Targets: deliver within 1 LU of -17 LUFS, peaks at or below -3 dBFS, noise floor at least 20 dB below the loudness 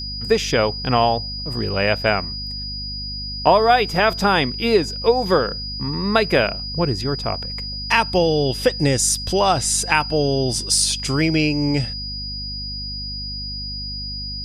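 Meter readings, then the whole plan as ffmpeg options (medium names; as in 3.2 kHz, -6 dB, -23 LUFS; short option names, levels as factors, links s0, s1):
hum 50 Hz; highest harmonic 250 Hz; hum level -30 dBFS; steady tone 4.9 kHz; tone level -28 dBFS; loudness -20.0 LUFS; peak level -1.5 dBFS; loudness target -17.0 LUFS
-> -af "bandreject=f=50:t=h:w=4,bandreject=f=100:t=h:w=4,bandreject=f=150:t=h:w=4,bandreject=f=200:t=h:w=4,bandreject=f=250:t=h:w=4"
-af "bandreject=f=4900:w=30"
-af "volume=1.41,alimiter=limit=0.708:level=0:latency=1"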